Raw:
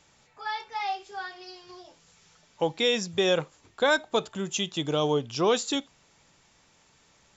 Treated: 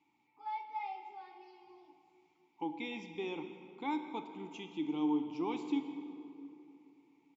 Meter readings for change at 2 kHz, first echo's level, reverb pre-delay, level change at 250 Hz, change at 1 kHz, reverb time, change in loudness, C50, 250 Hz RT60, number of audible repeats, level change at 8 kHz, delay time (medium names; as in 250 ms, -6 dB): -17.5 dB, -19.5 dB, 13 ms, -3.5 dB, -9.0 dB, 2.8 s, -12.0 dB, 8.0 dB, 3.3 s, 1, no reading, 171 ms